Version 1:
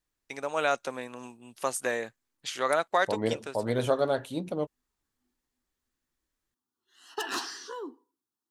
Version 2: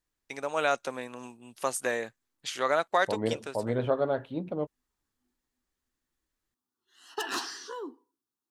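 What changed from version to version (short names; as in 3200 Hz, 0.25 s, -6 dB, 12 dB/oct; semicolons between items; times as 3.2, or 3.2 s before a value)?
second voice: add air absorption 410 m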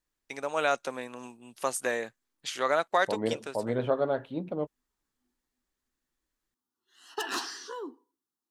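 master: add bell 90 Hz -9.5 dB 0.52 oct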